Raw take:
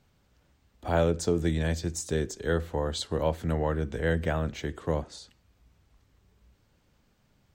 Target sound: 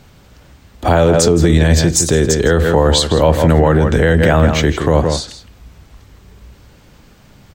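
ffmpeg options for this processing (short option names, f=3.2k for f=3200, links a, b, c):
-filter_complex "[0:a]asplit=2[a][b];[b]adelay=163.3,volume=-10dB,highshelf=f=4k:g=-3.67[c];[a][c]amix=inputs=2:normalize=0,alimiter=level_in=22.5dB:limit=-1dB:release=50:level=0:latency=1,volume=-1dB"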